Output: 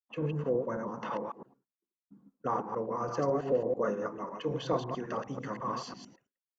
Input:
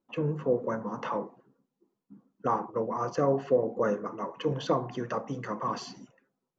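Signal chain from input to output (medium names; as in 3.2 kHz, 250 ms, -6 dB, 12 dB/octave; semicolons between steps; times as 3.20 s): chunks repeated in reverse 110 ms, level -3.5 dB; expander -52 dBFS; trim -4.5 dB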